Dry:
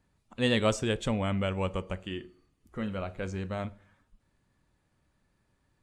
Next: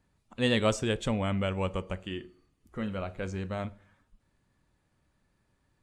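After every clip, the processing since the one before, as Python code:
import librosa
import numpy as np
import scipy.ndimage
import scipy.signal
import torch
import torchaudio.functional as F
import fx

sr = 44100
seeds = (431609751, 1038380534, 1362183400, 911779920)

y = x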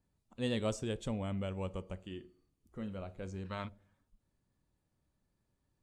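y = fx.spec_box(x, sr, start_s=3.45, length_s=0.24, low_hz=850.0, high_hz=5600.0, gain_db=11)
y = fx.peak_eq(y, sr, hz=1800.0, db=-7.0, octaves=2.0)
y = F.gain(torch.from_numpy(y), -7.0).numpy()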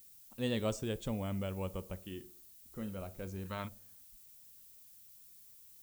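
y = fx.dmg_noise_colour(x, sr, seeds[0], colour='violet', level_db=-58.0)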